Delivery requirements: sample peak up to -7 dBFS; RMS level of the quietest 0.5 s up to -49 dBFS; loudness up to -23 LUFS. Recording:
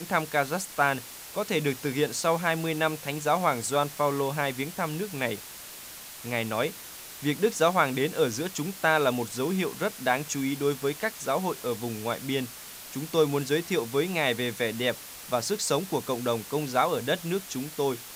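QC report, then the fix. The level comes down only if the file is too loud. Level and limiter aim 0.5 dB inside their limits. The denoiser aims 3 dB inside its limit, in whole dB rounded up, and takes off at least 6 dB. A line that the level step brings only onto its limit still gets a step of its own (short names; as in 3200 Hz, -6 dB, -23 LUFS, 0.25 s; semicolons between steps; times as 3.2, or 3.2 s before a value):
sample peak -8.0 dBFS: OK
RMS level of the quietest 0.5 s -43 dBFS: fail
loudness -28.0 LUFS: OK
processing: denoiser 9 dB, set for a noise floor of -43 dBFS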